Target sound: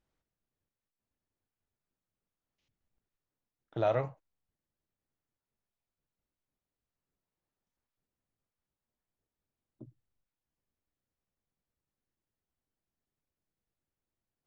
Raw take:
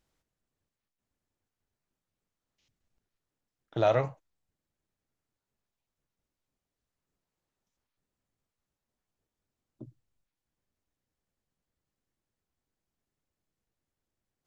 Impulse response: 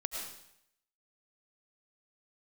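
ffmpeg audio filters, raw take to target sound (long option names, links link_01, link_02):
-af "highshelf=frequency=4600:gain=-11.5,volume=-4dB"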